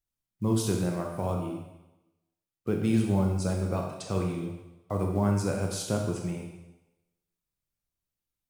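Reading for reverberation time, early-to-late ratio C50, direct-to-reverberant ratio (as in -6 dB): 1.0 s, 4.0 dB, 1.0 dB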